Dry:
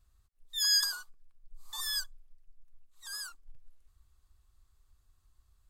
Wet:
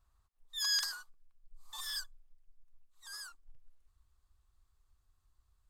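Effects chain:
parametric band 960 Hz +10 dB 1.3 octaves, from 0:00.79 +3 dB
highs frequency-modulated by the lows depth 0.4 ms
level −5.5 dB

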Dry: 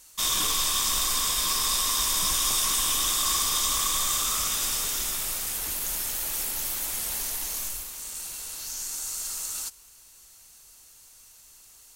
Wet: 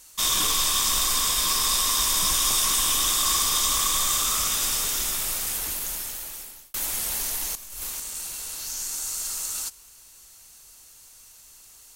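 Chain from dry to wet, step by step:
0:05.53–0:06.74: fade out
0:07.55–0:08.00: compressor whose output falls as the input rises −37 dBFS, ratio −0.5
level +2.5 dB

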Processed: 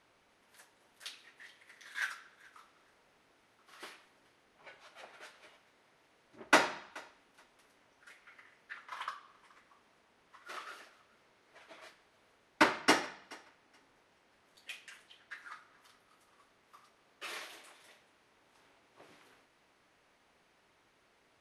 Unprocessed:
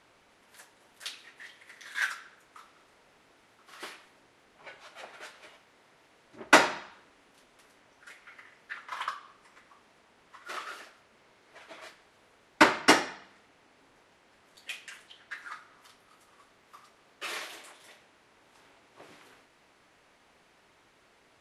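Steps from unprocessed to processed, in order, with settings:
notch filter 7,400 Hz, Q 15
on a send: feedback echo with a high-pass in the loop 427 ms, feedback 18%, level −23 dB
on the sum: level −6.5 dB

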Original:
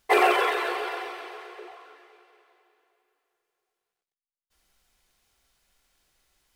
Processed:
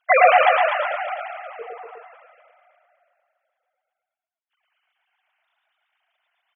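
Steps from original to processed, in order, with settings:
three sine waves on the formant tracks
on a send: multi-tap delay 102/110/244/361 ms −16.5/−3/−7/−9 dB
on the sum: level +4.5 dB

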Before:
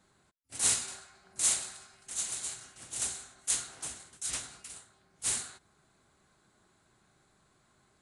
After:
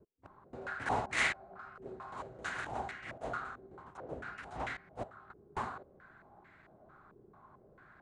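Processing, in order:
slices reordered back to front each 265 ms, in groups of 2
low-pass on a step sequencer 4.5 Hz 420–2,000 Hz
level +5.5 dB

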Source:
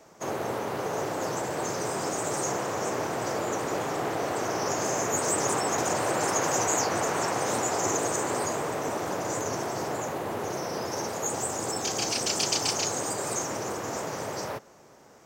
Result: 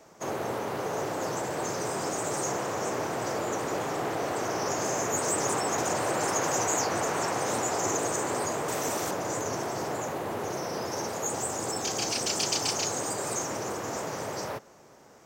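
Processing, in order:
0:08.68–0:09.11: high-shelf EQ 3,400 Hz +11 dB
in parallel at −9 dB: soft clipping −27 dBFS, distortion −12 dB
on the sum: level −3 dB

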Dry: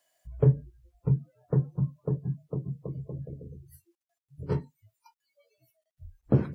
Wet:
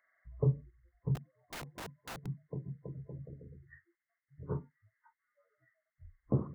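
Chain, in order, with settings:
hearing-aid frequency compression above 1,000 Hz 4 to 1
0:01.15–0:02.26: wrap-around overflow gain 30.5 dB
level −8 dB

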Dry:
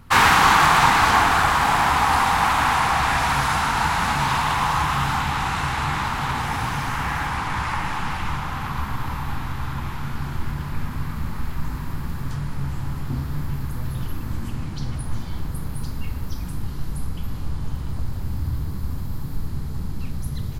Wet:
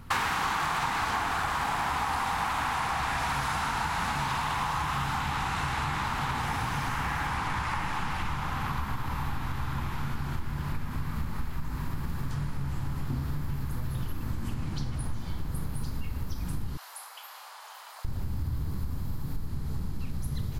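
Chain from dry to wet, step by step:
0:16.77–0:18.05: Butterworth high-pass 670 Hz 36 dB per octave
downward compressor 6 to 1, threshold −27 dBFS, peak gain reduction 15 dB

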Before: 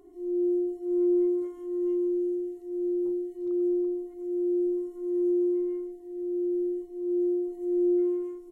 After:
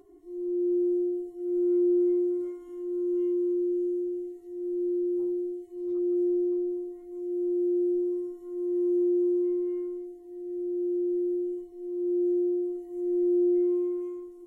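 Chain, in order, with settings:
time stretch by phase vocoder 1.7×
level +1 dB

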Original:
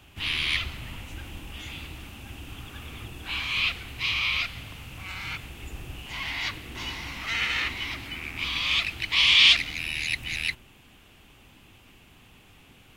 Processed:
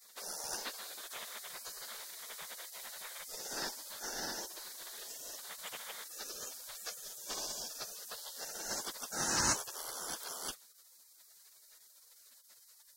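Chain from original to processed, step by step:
high-pass filter 42 Hz 12 dB per octave
gate on every frequency bin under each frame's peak −25 dB weak
level +7.5 dB

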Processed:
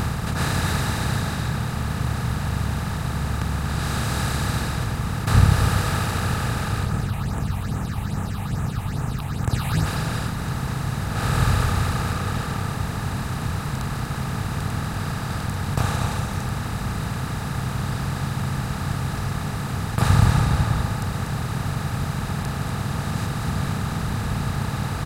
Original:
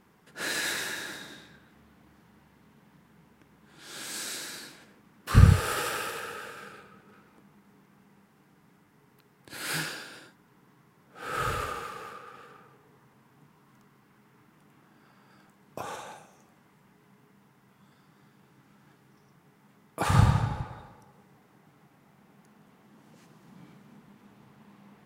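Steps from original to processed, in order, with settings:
compressor on every frequency bin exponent 0.2
reverb reduction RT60 1 s
0:06.85–0:09.86: all-pass phaser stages 6, 2.4 Hz, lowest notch 370–4,500 Hz
single-tap delay 241 ms −7 dB
level −1.5 dB

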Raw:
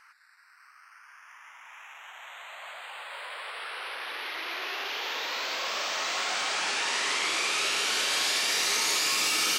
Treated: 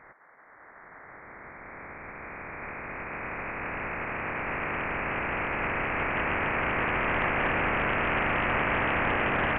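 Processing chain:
ceiling on every frequency bin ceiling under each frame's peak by 15 dB
high-pass filter 440 Hz 24 dB per octave
voice inversion scrambler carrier 3,000 Hz
highs frequency-modulated by the lows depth 0.36 ms
level +6 dB

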